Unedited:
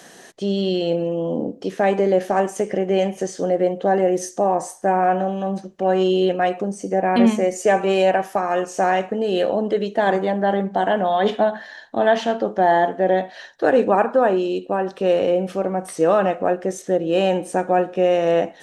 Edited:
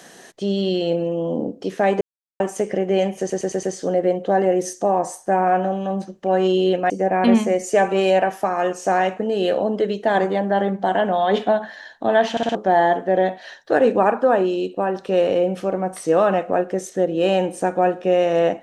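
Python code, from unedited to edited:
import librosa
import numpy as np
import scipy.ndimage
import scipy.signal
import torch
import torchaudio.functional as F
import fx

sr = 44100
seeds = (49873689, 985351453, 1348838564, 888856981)

y = fx.edit(x, sr, fx.silence(start_s=2.01, length_s=0.39),
    fx.stutter(start_s=3.19, slice_s=0.11, count=5),
    fx.cut(start_s=6.46, length_s=0.36),
    fx.stutter_over(start_s=12.23, slice_s=0.06, count=4), tone=tone)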